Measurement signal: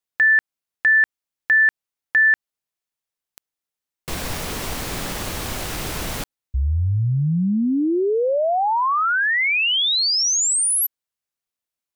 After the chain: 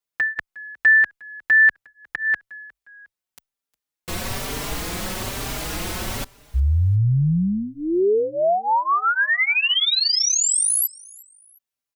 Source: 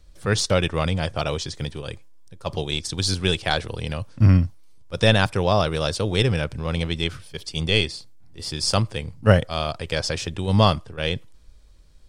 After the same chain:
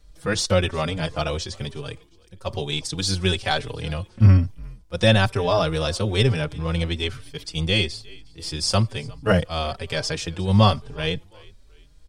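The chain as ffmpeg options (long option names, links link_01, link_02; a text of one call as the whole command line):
ffmpeg -i in.wav -filter_complex "[0:a]asplit=3[link_01][link_02][link_03];[link_02]adelay=358,afreqshift=-52,volume=-24dB[link_04];[link_03]adelay=716,afreqshift=-104,volume=-32.6dB[link_05];[link_01][link_04][link_05]amix=inputs=3:normalize=0,asplit=2[link_06][link_07];[link_07]adelay=4.6,afreqshift=1.1[link_08];[link_06][link_08]amix=inputs=2:normalize=1,volume=2.5dB" out.wav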